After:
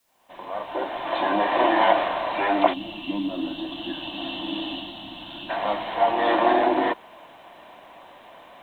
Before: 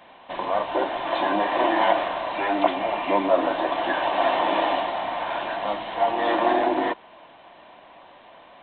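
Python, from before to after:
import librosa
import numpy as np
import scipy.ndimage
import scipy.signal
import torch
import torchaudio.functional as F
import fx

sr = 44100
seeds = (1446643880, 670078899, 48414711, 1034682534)

y = fx.fade_in_head(x, sr, length_s=1.54)
y = fx.quant_dither(y, sr, seeds[0], bits=12, dither='triangular')
y = fx.spec_box(y, sr, start_s=2.73, length_s=2.77, low_hz=360.0, high_hz=2600.0, gain_db=-19)
y = y * librosa.db_to_amplitude(1.5)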